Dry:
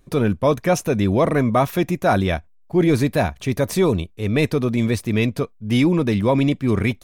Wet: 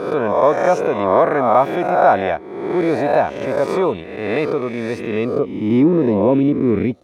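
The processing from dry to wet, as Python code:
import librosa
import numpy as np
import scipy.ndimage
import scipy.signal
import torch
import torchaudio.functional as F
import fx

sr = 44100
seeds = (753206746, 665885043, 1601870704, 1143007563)

y = fx.spec_swells(x, sr, rise_s=1.07)
y = fx.filter_sweep_bandpass(y, sr, from_hz=790.0, to_hz=340.0, start_s=4.99, end_s=5.62, q=1.0)
y = y * librosa.db_to_amplitude(4.0)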